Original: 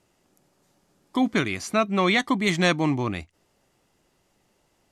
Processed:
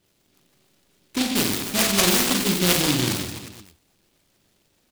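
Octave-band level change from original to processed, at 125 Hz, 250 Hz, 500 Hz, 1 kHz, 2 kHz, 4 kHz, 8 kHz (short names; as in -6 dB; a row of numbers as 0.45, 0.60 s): +1.0, 0.0, -1.0, -3.0, -0.5, +8.0, +16.0 dB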